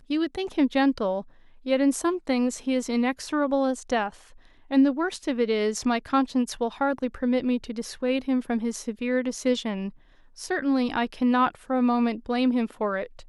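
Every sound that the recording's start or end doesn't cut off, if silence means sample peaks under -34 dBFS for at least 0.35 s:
1.66–4.09
4.71–9.89

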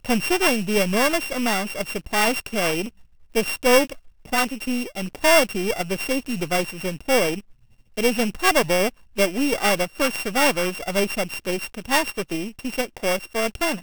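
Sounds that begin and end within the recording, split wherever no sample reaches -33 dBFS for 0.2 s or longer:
3.35–3.93
4.25–7.4
7.97–8.89

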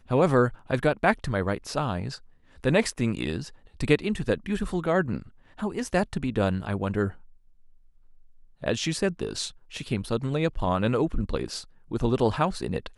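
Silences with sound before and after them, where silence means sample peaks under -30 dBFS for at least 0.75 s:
7.1–8.64

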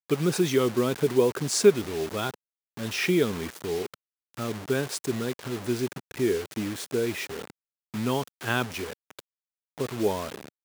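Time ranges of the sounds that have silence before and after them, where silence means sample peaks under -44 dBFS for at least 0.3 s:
2.77–3.94
4.34–7.5
7.94–9.2

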